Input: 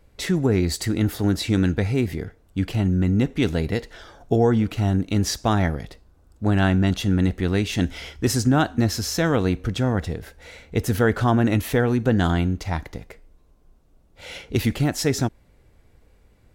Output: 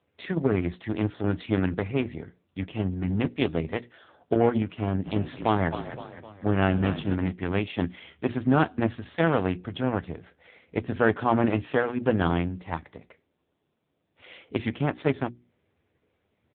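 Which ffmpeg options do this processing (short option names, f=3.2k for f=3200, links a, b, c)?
-filter_complex "[0:a]lowshelf=f=280:g=-4.5,bandreject=f=60:t=h:w=6,bandreject=f=120:t=h:w=6,bandreject=f=180:t=h:w=6,bandreject=f=240:t=h:w=6,bandreject=f=300:t=h:w=6,bandreject=f=360:t=h:w=6,aeval=exprs='0.422*(cos(1*acos(clip(val(0)/0.422,-1,1)))-cos(1*PI/2))+0.0299*(cos(4*acos(clip(val(0)/0.422,-1,1)))-cos(4*PI/2))+0.0299*(cos(7*acos(clip(val(0)/0.422,-1,1)))-cos(7*PI/2))':c=same,asplit=2[a][b];[b]adelay=12,volume=-12.5dB[c];[a][c]amix=inputs=2:normalize=0,asplit=3[d][e][f];[d]afade=t=out:st=5.04:d=0.02[g];[e]asplit=6[h][i][j][k][l][m];[i]adelay=257,afreqshift=-34,volume=-10dB[n];[j]adelay=514,afreqshift=-68,volume=-16.4dB[o];[k]adelay=771,afreqshift=-102,volume=-22.8dB[p];[l]adelay=1028,afreqshift=-136,volume=-29.1dB[q];[m]adelay=1285,afreqshift=-170,volume=-35.5dB[r];[h][n][o][p][q][r]amix=inputs=6:normalize=0,afade=t=in:st=5.04:d=0.02,afade=t=out:st=7.14:d=0.02[s];[f]afade=t=in:st=7.14:d=0.02[t];[g][s][t]amix=inputs=3:normalize=0" -ar 8000 -c:a libopencore_amrnb -b:a 6700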